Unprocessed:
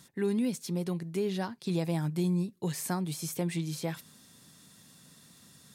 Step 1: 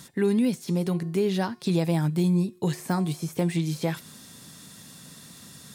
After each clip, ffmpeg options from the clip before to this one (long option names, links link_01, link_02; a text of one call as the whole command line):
ffmpeg -i in.wav -filter_complex "[0:a]asplit=2[link_01][link_02];[link_02]acompressor=threshold=-38dB:ratio=6,volume=-1dB[link_03];[link_01][link_03]amix=inputs=2:normalize=0,bandreject=frequency=360:width_type=h:width=4,bandreject=frequency=720:width_type=h:width=4,bandreject=frequency=1080:width_type=h:width=4,bandreject=frequency=1440:width_type=h:width=4,bandreject=frequency=1800:width_type=h:width=4,bandreject=frequency=2160:width_type=h:width=4,bandreject=frequency=2520:width_type=h:width=4,bandreject=frequency=2880:width_type=h:width=4,bandreject=frequency=3240:width_type=h:width=4,bandreject=frequency=3600:width_type=h:width=4,bandreject=frequency=3960:width_type=h:width=4,bandreject=frequency=4320:width_type=h:width=4,bandreject=frequency=4680:width_type=h:width=4,bandreject=frequency=5040:width_type=h:width=4,bandreject=frequency=5400:width_type=h:width=4,bandreject=frequency=5760:width_type=h:width=4,bandreject=frequency=6120:width_type=h:width=4,bandreject=frequency=6480:width_type=h:width=4,bandreject=frequency=6840:width_type=h:width=4,bandreject=frequency=7200:width_type=h:width=4,bandreject=frequency=7560:width_type=h:width=4,bandreject=frequency=7920:width_type=h:width=4,bandreject=frequency=8280:width_type=h:width=4,bandreject=frequency=8640:width_type=h:width=4,bandreject=frequency=9000:width_type=h:width=4,bandreject=frequency=9360:width_type=h:width=4,bandreject=frequency=9720:width_type=h:width=4,bandreject=frequency=10080:width_type=h:width=4,bandreject=frequency=10440:width_type=h:width=4,deesser=0.95,volume=4.5dB" out.wav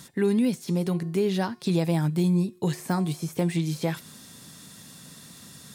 ffmpeg -i in.wav -af anull out.wav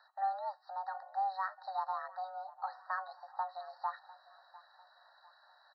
ffmpeg -i in.wav -filter_complex "[0:a]highpass=frequency=400:width_type=q:width=0.5412,highpass=frequency=400:width_type=q:width=1.307,lowpass=frequency=3100:width_type=q:width=0.5176,lowpass=frequency=3100:width_type=q:width=0.7071,lowpass=frequency=3100:width_type=q:width=1.932,afreqshift=380,asplit=2[link_01][link_02];[link_02]adelay=700,lowpass=frequency=1700:poles=1,volume=-18.5dB,asplit=2[link_03][link_04];[link_04]adelay=700,lowpass=frequency=1700:poles=1,volume=0.51,asplit=2[link_05][link_06];[link_06]adelay=700,lowpass=frequency=1700:poles=1,volume=0.51,asplit=2[link_07][link_08];[link_08]adelay=700,lowpass=frequency=1700:poles=1,volume=0.51[link_09];[link_01][link_03][link_05][link_07][link_09]amix=inputs=5:normalize=0,afftfilt=real='re*eq(mod(floor(b*sr/1024/1900),2),0)':imag='im*eq(mod(floor(b*sr/1024/1900),2),0)':win_size=1024:overlap=0.75,volume=-5.5dB" out.wav